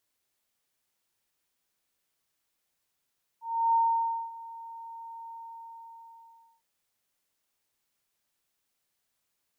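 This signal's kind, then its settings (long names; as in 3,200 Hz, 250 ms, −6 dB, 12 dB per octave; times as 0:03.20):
note with an ADSR envelope sine 917 Hz, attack 328 ms, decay 566 ms, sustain −20 dB, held 1.90 s, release 1,310 ms −20 dBFS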